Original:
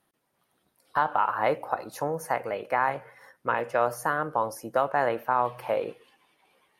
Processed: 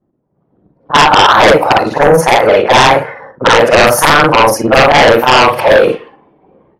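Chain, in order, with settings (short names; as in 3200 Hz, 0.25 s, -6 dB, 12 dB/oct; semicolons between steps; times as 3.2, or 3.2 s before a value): short-time reversal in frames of 0.121 s; in parallel at -4 dB: soft clip -21.5 dBFS, distortion -14 dB; on the sum: low-pass opened by the level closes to 360 Hz, open at -24.5 dBFS; sine folder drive 12 dB, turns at -11 dBFS; AGC gain up to 14 dB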